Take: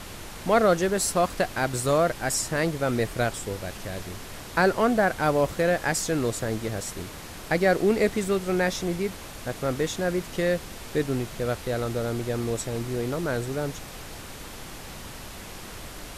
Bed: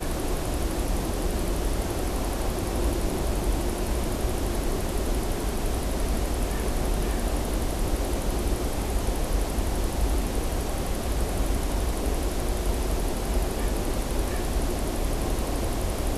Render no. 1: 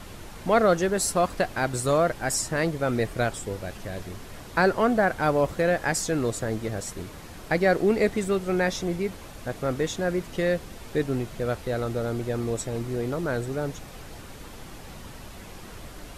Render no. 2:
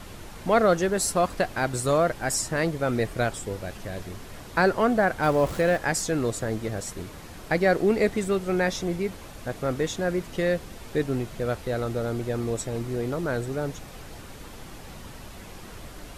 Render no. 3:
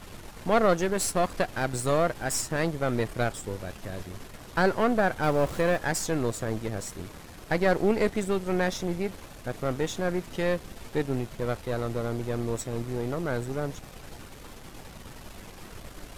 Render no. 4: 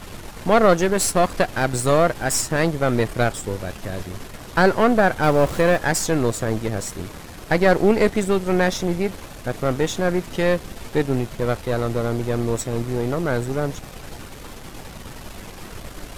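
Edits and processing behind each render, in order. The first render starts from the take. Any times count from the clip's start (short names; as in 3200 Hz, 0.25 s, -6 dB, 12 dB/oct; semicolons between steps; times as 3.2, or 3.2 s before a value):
denoiser 6 dB, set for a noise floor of -41 dBFS
5.23–5.77 zero-crossing step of -35 dBFS
half-wave gain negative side -7 dB
gain +7.5 dB; limiter -3 dBFS, peak gain reduction 1 dB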